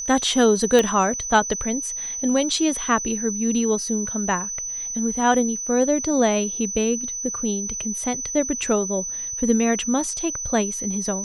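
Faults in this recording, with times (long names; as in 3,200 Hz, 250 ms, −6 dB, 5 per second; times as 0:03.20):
whistle 6,000 Hz −27 dBFS
0:00.79: click −6 dBFS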